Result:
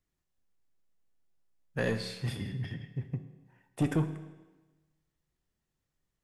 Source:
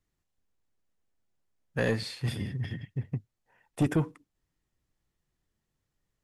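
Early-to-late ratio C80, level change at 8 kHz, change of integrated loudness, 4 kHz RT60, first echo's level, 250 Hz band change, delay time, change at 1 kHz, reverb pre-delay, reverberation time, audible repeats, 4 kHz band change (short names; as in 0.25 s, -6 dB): 13.0 dB, -2.5 dB, -2.5 dB, 1.1 s, none, -2.0 dB, none, -2.5 dB, 5 ms, 1.2 s, none, -2.5 dB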